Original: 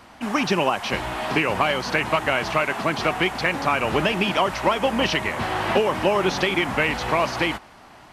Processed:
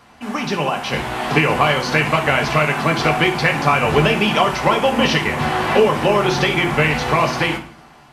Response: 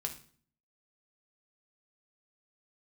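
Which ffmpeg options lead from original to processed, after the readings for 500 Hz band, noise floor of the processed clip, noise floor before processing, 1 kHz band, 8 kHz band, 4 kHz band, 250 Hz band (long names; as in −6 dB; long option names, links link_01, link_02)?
+5.0 dB, −46 dBFS, −47 dBFS, +5.0 dB, +5.0 dB, +4.5 dB, +5.0 dB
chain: -filter_complex "[0:a]dynaudnorm=framelen=260:gausssize=7:maxgain=11.5dB[link_01];[1:a]atrim=start_sample=2205[link_02];[link_01][link_02]afir=irnorm=-1:irlink=0,volume=-1dB"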